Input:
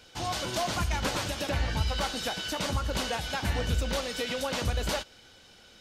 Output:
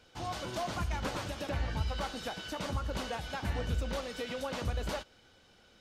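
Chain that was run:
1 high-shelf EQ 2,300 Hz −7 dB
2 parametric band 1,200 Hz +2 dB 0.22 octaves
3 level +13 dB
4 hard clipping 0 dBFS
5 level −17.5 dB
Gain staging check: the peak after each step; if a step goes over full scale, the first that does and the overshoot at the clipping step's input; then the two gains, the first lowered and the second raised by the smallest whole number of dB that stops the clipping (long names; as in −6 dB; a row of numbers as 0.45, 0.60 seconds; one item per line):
−16.0, −16.0, −3.0, −3.0, −20.5 dBFS
no step passes full scale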